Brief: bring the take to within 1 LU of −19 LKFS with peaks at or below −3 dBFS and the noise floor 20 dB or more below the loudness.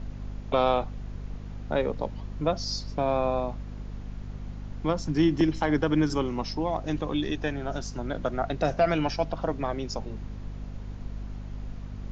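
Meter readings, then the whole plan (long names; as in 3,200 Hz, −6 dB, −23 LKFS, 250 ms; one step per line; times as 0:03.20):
mains hum 50 Hz; hum harmonics up to 250 Hz; level of the hum −35 dBFS; background noise floor −40 dBFS; target noise floor −49 dBFS; integrated loudness −28.5 LKFS; sample peak −10.5 dBFS; target loudness −19.0 LKFS
→ mains-hum notches 50/100/150/200/250 Hz
noise reduction from a noise print 9 dB
level +9.5 dB
brickwall limiter −3 dBFS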